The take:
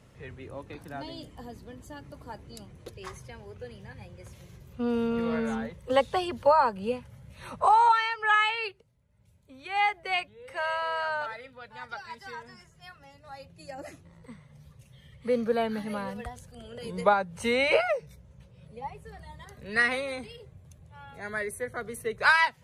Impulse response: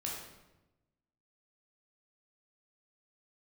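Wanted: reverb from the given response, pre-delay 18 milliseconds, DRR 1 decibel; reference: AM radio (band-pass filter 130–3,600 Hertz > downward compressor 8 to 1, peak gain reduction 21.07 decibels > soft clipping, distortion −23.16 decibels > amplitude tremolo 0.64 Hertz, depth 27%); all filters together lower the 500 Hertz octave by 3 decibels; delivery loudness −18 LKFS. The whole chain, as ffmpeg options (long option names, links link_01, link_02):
-filter_complex "[0:a]equalizer=frequency=500:width_type=o:gain=-3.5,asplit=2[link_01][link_02];[1:a]atrim=start_sample=2205,adelay=18[link_03];[link_02][link_03]afir=irnorm=-1:irlink=0,volume=-2.5dB[link_04];[link_01][link_04]amix=inputs=2:normalize=0,highpass=130,lowpass=3600,acompressor=threshold=-36dB:ratio=8,asoftclip=threshold=-29dB,tremolo=f=0.64:d=0.27,volume=25dB"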